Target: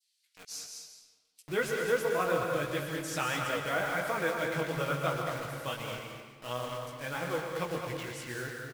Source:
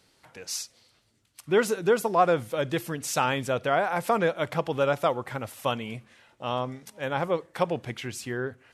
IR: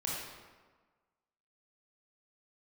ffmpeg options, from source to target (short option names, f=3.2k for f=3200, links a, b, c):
-filter_complex "[0:a]equalizer=f=880:w=1.6:g=-6,aecho=1:1:6.3:0.46,adynamicequalizer=threshold=0.00794:dfrequency=1700:dqfactor=0.71:tfrequency=1700:tqfactor=0.71:attack=5:release=100:ratio=0.375:range=3:mode=boostabove:tftype=bell,acrossover=split=2600[a][b];[a]acrusher=bits=5:mix=0:aa=0.000001[c];[c][b]amix=inputs=2:normalize=0,flanger=delay=16:depth=5.6:speed=2.9,aecho=1:1:213:0.422,asplit=2[d][e];[1:a]atrim=start_sample=2205,adelay=120[f];[e][f]afir=irnorm=-1:irlink=0,volume=-7.5dB[g];[d][g]amix=inputs=2:normalize=0,volume=-6.5dB"